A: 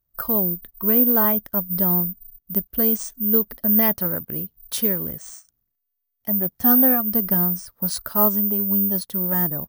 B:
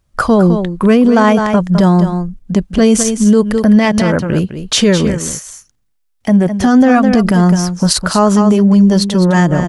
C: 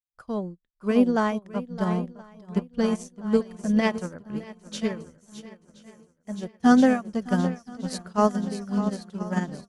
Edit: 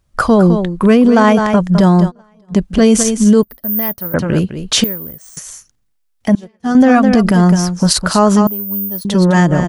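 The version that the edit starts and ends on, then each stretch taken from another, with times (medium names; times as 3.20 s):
B
2.09–2.53 s: from C, crossfade 0.06 s
3.43–4.14 s: from A
4.84–5.37 s: from A
6.35–6.75 s: from C
8.47–9.05 s: from A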